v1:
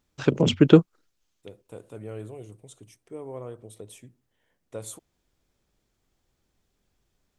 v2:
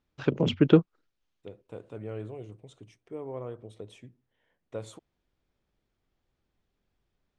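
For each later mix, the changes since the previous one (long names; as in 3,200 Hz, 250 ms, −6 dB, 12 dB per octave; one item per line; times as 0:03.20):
first voice −4.5 dB
master: add low-pass filter 3,900 Hz 12 dB per octave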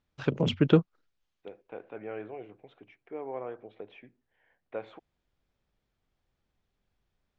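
first voice: add parametric band 330 Hz −4 dB 0.9 octaves
second voice: add loudspeaker in its box 260–3,000 Hz, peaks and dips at 770 Hz +8 dB, 1,600 Hz +8 dB, 2,300 Hz +7 dB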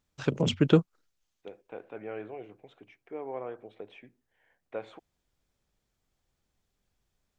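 master: remove low-pass filter 3,900 Hz 12 dB per octave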